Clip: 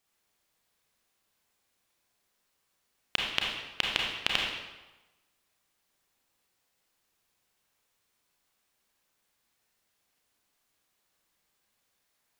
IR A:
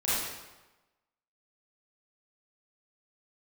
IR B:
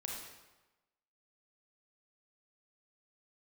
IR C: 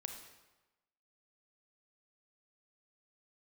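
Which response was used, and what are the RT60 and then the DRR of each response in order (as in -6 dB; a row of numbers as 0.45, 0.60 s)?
B; 1.1, 1.1, 1.1 s; -11.0, -2.0, 4.5 dB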